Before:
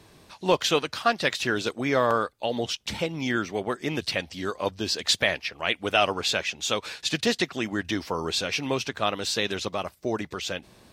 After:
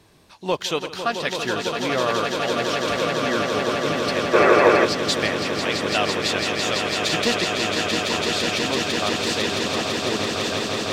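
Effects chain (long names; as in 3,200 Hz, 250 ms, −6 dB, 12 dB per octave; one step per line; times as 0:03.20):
0:06.90–0:07.35: leveller curve on the samples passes 1
echo that builds up and dies away 167 ms, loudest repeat 8, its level −7 dB
0:04.34–0:04.85: gain on a spectral selection 320–2,700 Hz +10 dB
level −1.5 dB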